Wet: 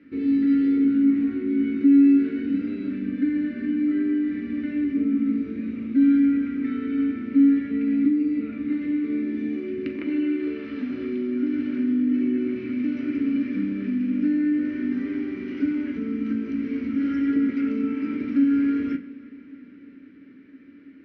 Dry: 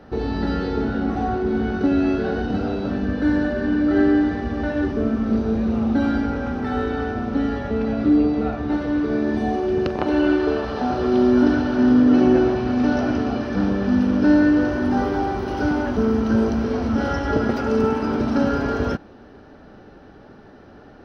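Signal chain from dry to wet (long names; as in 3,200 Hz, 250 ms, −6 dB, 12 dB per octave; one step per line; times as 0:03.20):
downward compressor 4 to 1, threshold −19 dBFS, peak gain reduction 7.5 dB
pair of resonant band-passes 770 Hz, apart 3 octaves
convolution reverb, pre-delay 3 ms, DRR 4 dB
level +4.5 dB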